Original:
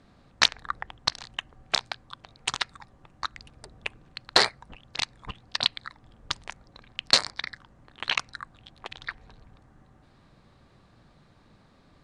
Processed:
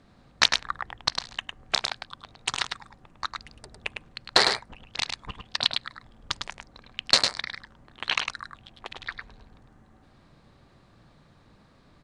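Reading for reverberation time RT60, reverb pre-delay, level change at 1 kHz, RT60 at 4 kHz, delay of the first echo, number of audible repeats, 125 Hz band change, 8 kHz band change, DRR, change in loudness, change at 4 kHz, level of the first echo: no reverb audible, no reverb audible, +1.0 dB, no reverb audible, 104 ms, 1, +0.5 dB, +1.0 dB, no reverb audible, +0.5 dB, +1.0 dB, −5.5 dB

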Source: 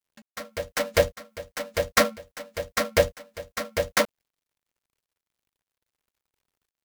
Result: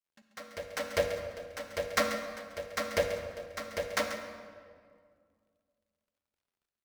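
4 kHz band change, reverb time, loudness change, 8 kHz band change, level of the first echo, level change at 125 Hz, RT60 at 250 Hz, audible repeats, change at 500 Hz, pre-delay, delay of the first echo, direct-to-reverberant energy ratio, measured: −8.0 dB, 2.1 s, −8.5 dB, −9.5 dB, −11.5 dB, −10.5 dB, 2.6 s, 1, −7.5 dB, 39 ms, 137 ms, 5.0 dB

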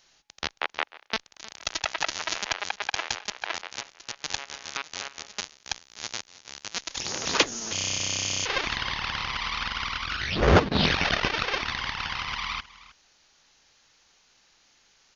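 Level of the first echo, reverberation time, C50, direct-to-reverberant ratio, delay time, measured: −19.0 dB, no reverb audible, no reverb audible, no reverb audible, 314 ms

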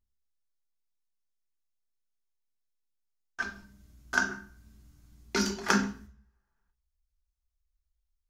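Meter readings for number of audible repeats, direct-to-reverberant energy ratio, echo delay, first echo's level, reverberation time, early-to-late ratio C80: no echo audible, 2.5 dB, no echo audible, no echo audible, 0.45 s, 14.5 dB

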